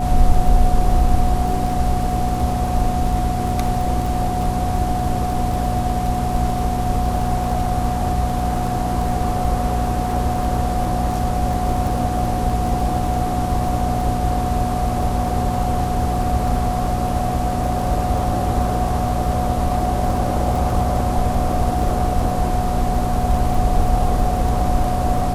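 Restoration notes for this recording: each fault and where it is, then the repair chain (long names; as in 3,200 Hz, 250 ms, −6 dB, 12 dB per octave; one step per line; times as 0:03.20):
surface crackle 22 per second −24 dBFS
mains hum 60 Hz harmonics 4 −24 dBFS
whistle 730 Hz −23 dBFS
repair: click removal
hum removal 60 Hz, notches 4
notch filter 730 Hz, Q 30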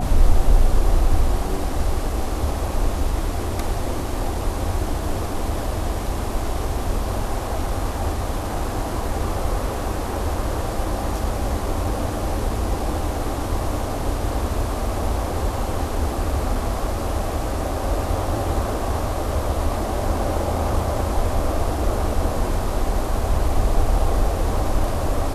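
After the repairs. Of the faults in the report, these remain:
none of them is left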